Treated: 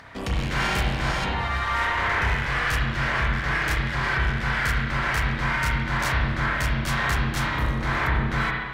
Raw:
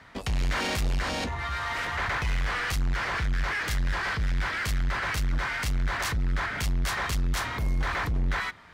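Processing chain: upward compressor, threshold -44 dBFS; spring tank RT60 1.3 s, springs 31/59 ms, chirp 50 ms, DRR -4.5 dB

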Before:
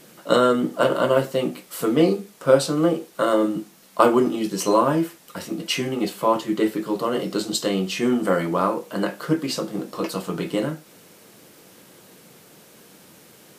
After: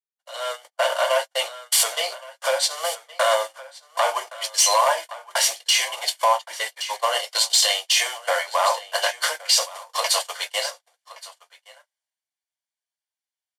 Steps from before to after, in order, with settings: CVSD 64 kbps; compressor 4:1, threshold -35 dBFS, peak gain reduction 21 dB; overdrive pedal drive 14 dB, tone 6200 Hz, clips at -18.5 dBFS; high shelf 2200 Hz +7.5 dB; gate -31 dBFS, range -54 dB; steep high-pass 610 Hz 48 dB/oct; notch comb 1300 Hz; on a send: echo 1.119 s -17.5 dB; on the sum: dynamic EQ 1400 Hz, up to -5 dB, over -48 dBFS, Q 1; limiter -26.5 dBFS, peak gain reduction 10.5 dB; AGC gain up to 16.5 dB; three-band expander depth 40%

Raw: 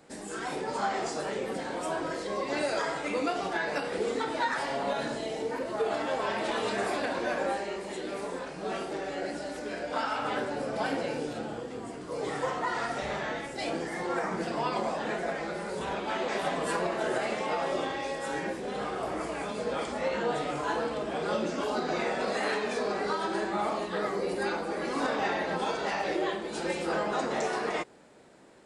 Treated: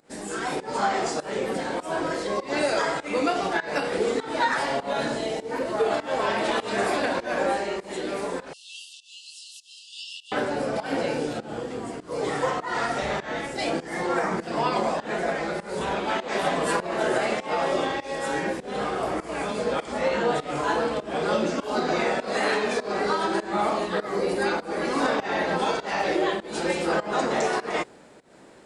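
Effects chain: pump 100 bpm, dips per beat 1, -20 dB, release 0.224 s; 8.53–10.32 brick-wall FIR high-pass 2600 Hz; gain +6 dB

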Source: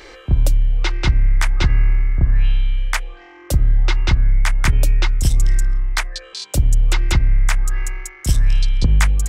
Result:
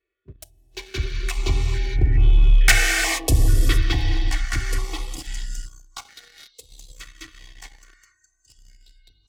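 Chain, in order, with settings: Wiener smoothing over 9 samples; Doppler pass-by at 2.75, 31 m/s, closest 6.8 m; HPF 91 Hz 6 dB/oct; comb 2.7 ms, depth 95%; non-linear reverb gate 0.49 s flat, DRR 1 dB; spectral noise reduction 17 dB; sample leveller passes 2; stepped notch 2.3 Hz 830–1800 Hz; gain +2.5 dB

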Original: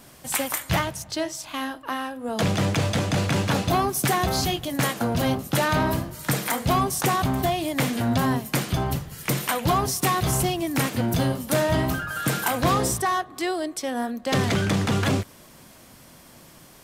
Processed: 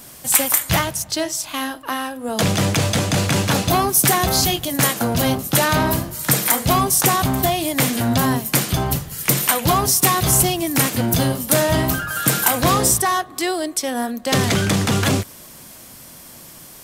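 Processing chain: high shelf 5300 Hz +10 dB; gain +4 dB

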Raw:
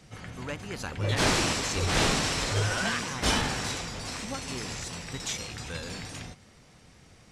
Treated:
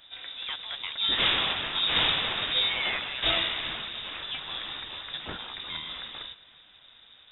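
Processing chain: thinning echo 0.39 s, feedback 48%, level -22 dB; inverted band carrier 3700 Hz

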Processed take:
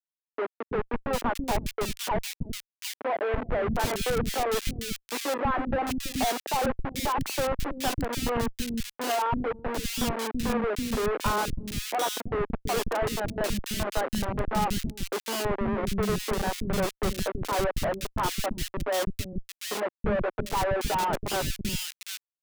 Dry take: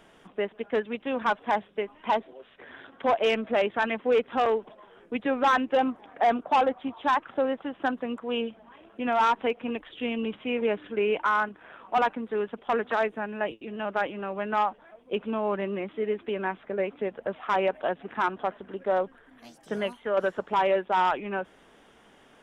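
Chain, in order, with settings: dynamic EQ 290 Hz, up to -4 dB, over -41 dBFS, Q 1.3; Schmitt trigger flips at -31 dBFS; three bands offset in time mids, lows, highs 0.33/0.75 s, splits 300/2200 Hz; gain +4.5 dB

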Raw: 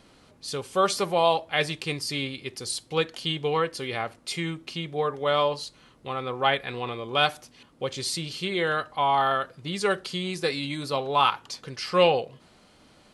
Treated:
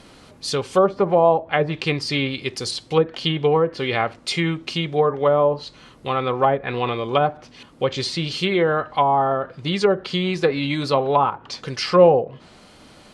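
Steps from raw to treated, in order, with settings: treble ducked by the level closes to 720 Hz, closed at -20.5 dBFS; gain +9 dB

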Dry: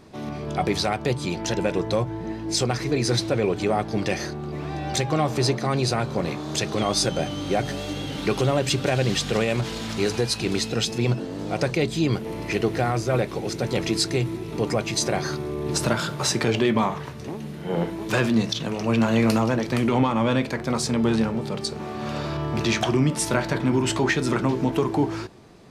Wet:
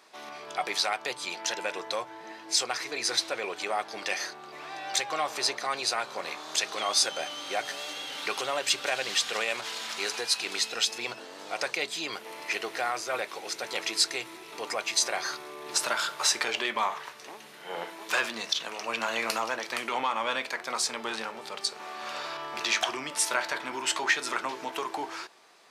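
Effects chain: HPF 920 Hz 12 dB/oct

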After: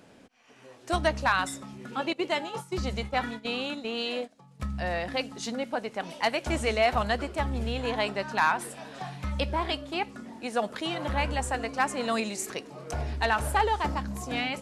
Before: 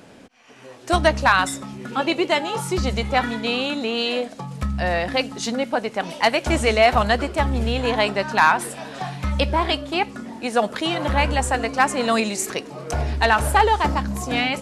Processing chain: 2.13–4.6 gate -25 dBFS, range -14 dB; gain -8.5 dB

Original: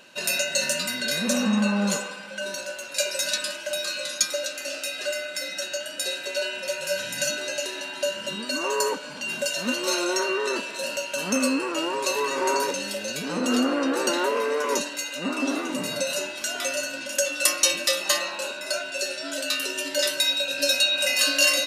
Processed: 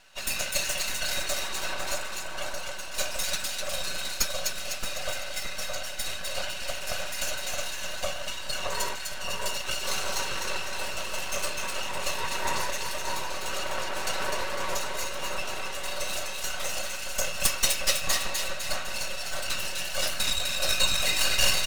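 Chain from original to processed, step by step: whisperiser; HPF 570 Hz 24 dB/oct; comb 5.3 ms, depth 60%; half-wave rectifier; split-band echo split 1700 Hz, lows 0.621 s, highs 0.252 s, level -4 dB; gain -2 dB

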